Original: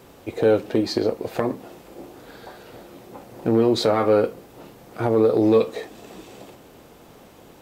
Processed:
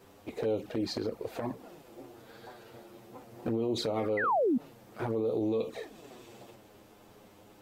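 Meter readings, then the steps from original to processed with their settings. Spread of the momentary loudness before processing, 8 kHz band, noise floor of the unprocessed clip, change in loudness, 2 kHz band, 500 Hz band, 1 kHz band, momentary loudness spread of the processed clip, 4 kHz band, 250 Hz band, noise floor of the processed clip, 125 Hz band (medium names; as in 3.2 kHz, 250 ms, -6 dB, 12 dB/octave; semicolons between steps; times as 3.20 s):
12 LU, -9.0 dB, -49 dBFS, -11.5 dB, -4.5 dB, -12.0 dB, -6.0 dB, 22 LU, -9.5 dB, -10.5 dB, -57 dBFS, -11.0 dB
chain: touch-sensitive flanger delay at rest 11 ms, full sweep at -15 dBFS; painted sound fall, 4.17–4.58 s, 220–2100 Hz -16 dBFS; peak limiter -17.5 dBFS, peak gain reduction 11 dB; trim -5.5 dB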